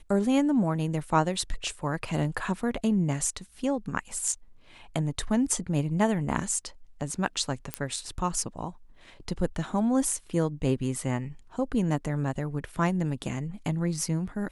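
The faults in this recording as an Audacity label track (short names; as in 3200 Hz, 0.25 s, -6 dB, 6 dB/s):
7.740000	7.740000	pop -12 dBFS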